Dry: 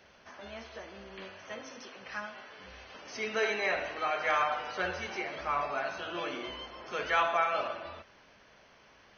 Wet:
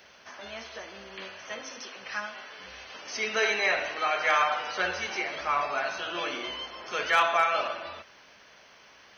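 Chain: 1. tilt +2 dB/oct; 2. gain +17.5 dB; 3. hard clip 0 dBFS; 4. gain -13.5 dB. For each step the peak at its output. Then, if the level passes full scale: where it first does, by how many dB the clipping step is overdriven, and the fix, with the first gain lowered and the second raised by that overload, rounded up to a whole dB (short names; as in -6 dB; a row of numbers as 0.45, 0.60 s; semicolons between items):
-14.5, +3.0, 0.0, -13.5 dBFS; step 2, 3.0 dB; step 2 +14.5 dB, step 4 -10.5 dB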